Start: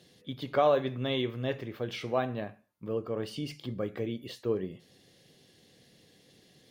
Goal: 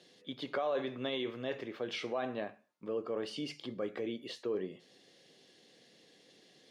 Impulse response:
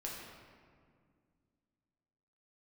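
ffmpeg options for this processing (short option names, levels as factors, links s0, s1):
-af "alimiter=level_in=1.12:limit=0.0631:level=0:latency=1:release=19,volume=0.891,highpass=270,lowpass=7600"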